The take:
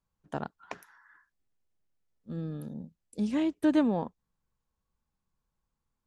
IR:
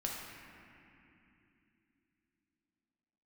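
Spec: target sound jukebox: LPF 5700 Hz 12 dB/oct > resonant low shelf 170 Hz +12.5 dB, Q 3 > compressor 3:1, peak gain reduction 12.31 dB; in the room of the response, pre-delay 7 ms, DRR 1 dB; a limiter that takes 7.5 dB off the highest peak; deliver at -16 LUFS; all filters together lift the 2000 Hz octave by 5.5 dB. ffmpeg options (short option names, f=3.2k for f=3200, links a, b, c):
-filter_complex "[0:a]equalizer=f=2k:t=o:g=7.5,alimiter=limit=-22dB:level=0:latency=1,asplit=2[a][b];[1:a]atrim=start_sample=2205,adelay=7[c];[b][c]afir=irnorm=-1:irlink=0,volume=-3.5dB[d];[a][d]amix=inputs=2:normalize=0,lowpass=5.7k,lowshelf=f=170:t=q:w=3:g=12.5,acompressor=threshold=-37dB:ratio=3,volume=24.5dB"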